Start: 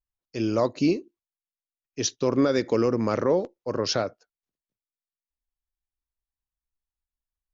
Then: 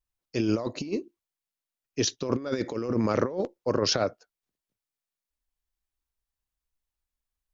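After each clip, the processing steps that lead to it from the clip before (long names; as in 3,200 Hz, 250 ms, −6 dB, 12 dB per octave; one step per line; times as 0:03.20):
compressor whose output falls as the input rises −26 dBFS, ratio −0.5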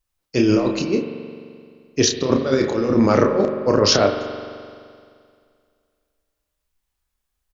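double-tracking delay 30 ms −6 dB
spring reverb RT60 2.2 s, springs 43 ms, chirp 65 ms, DRR 6.5 dB
level +8.5 dB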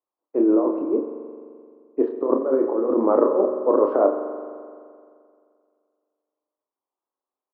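elliptic band-pass filter 290–1,100 Hz, stop band 70 dB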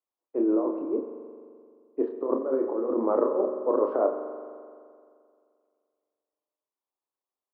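mains-hum notches 50/100/150/200/250/300 Hz
level −6 dB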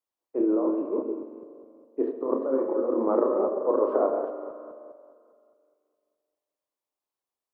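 delay that plays each chunk backwards 205 ms, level −6 dB
delay with a band-pass on its return 131 ms, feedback 56%, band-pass 490 Hz, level −14 dB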